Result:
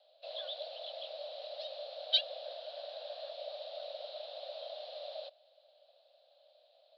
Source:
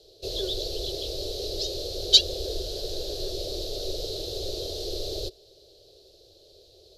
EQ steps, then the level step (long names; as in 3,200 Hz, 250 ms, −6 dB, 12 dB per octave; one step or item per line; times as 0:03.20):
Butterworth high-pass 570 Hz 96 dB per octave
low-pass filter 3,900 Hz 24 dB per octave
high-frequency loss of the air 380 metres
+1.0 dB